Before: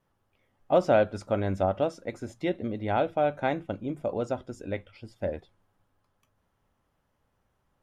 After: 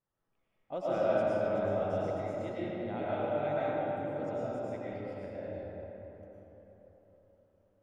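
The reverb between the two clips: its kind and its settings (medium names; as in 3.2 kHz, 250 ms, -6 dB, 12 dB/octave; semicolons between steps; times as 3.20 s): algorithmic reverb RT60 4.2 s, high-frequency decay 0.45×, pre-delay 70 ms, DRR -9.5 dB; trim -16.5 dB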